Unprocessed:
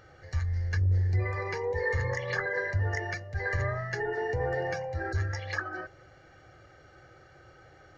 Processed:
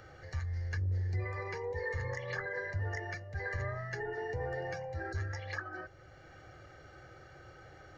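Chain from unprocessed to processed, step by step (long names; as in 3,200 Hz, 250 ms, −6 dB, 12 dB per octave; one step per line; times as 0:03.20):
multiband upward and downward compressor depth 40%
level −7 dB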